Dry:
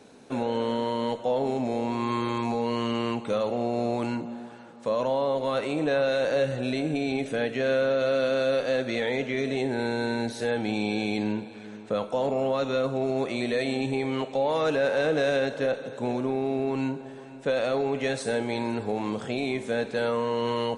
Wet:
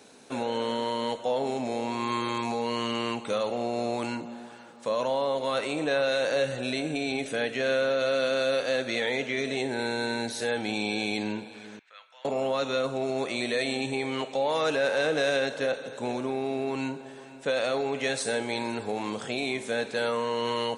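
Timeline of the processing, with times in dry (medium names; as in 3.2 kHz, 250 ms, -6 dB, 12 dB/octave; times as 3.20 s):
11.79–12.25 s: ladder band-pass 2.3 kHz, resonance 35%
whole clip: tilt EQ +2 dB/octave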